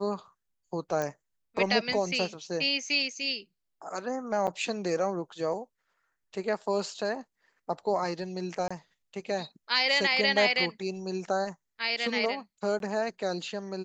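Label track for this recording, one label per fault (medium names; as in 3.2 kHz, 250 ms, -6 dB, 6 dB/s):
1.020000	1.020000	pop -19 dBFS
4.470000	4.480000	dropout 6.2 ms
8.680000	8.710000	dropout 25 ms
12.790000	12.800000	dropout 12 ms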